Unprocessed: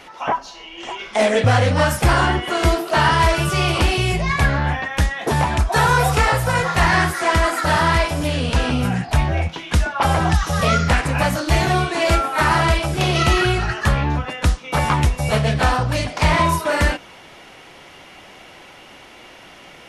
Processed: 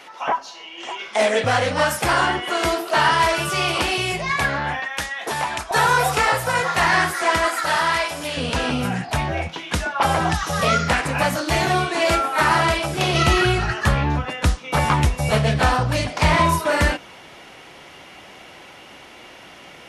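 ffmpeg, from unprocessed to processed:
-af "asetnsamples=n=441:p=0,asendcmd='4.8 highpass f 1000;5.71 highpass f 370;7.48 highpass f 850;8.37 highpass f 210;13.14 highpass f 50',highpass=f=410:p=1"

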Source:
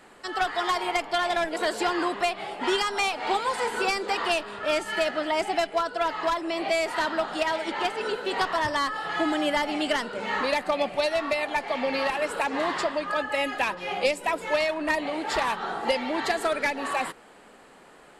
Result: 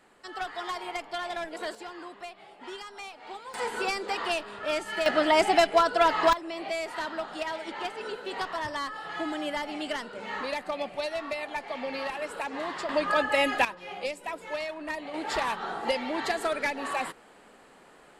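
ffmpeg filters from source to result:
-af "asetnsamples=n=441:p=0,asendcmd='1.75 volume volume -16dB;3.54 volume volume -4dB;5.06 volume volume 4.5dB;6.33 volume volume -7dB;12.89 volume volume 2.5dB;13.65 volume volume -9dB;15.14 volume volume -3dB',volume=-8.5dB"

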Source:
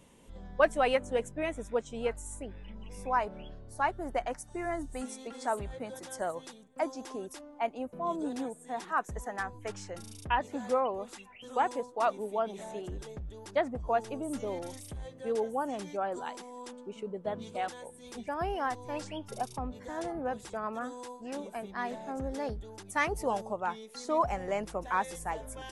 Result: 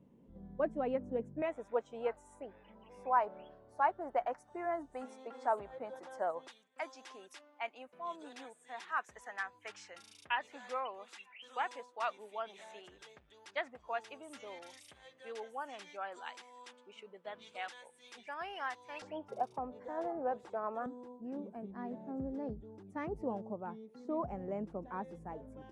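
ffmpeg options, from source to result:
-af "asetnsamples=n=441:p=0,asendcmd='1.42 bandpass f 820;6.48 bandpass f 2400;19.02 bandpass f 640;20.86 bandpass f 220',bandpass=f=210:t=q:w=1:csg=0"

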